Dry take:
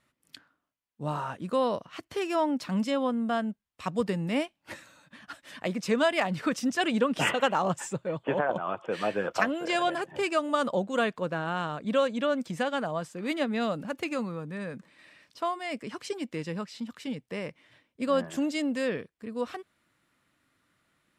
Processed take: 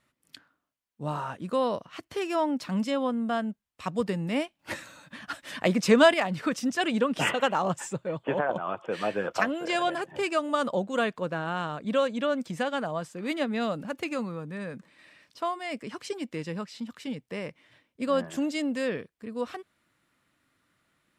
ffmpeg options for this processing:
ffmpeg -i in.wav -filter_complex "[0:a]asettb=1/sr,asplit=3[link_01][link_02][link_03];[link_01]atrim=end=4.594[link_04];[link_02]atrim=start=4.59:end=6.14,asetpts=PTS-STARTPTS,afade=type=in:duration=0.004:curve=qsin,afade=type=out:start_time=1.546:duration=0.004:curve=qsin,acontrast=78[link_05];[link_03]atrim=start=6.136[link_06];[link_04][link_05]acrossfade=duration=0.004:curve1=hsin:curve2=qsin[link_07];[link_07][link_06]acrossfade=duration=0.004:curve1=qsin:curve2=hsin" out.wav

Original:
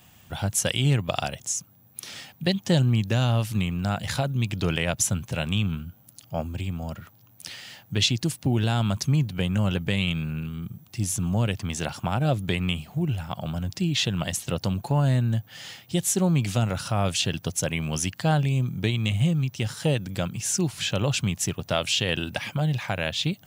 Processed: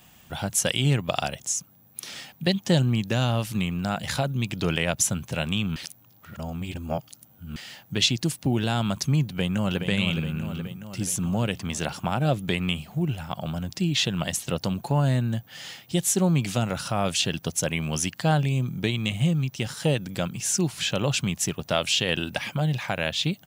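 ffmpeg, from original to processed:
ffmpeg -i in.wav -filter_complex "[0:a]asplit=2[link_01][link_02];[link_02]afade=type=in:start_time=9.25:duration=0.01,afade=type=out:start_time=9.79:duration=0.01,aecho=0:1:420|840|1260|1680|2100|2520|2940|3360|3780:0.446684|0.290344|0.188724|0.12267|0.0797358|0.0518283|0.0336884|0.0218974|0.0142333[link_03];[link_01][link_03]amix=inputs=2:normalize=0,asplit=3[link_04][link_05][link_06];[link_04]atrim=end=5.762[link_07];[link_05]atrim=start=5.758:end=7.562,asetpts=PTS-STARTPTS,areverse[link_08];[link_06]atrim=start=7.558[link_09];[link_07][link_08]acrossfade=duration=0.004:curve1=hsin:curve2=hsin[link_10];[link_10][link_09]acrossfade=duration=0.004:curve1=hsin:curve2=hsin,equalizer=frequency=99:width_type=o:width=0.47:gain=-8.5,volume=1dB" out.wav

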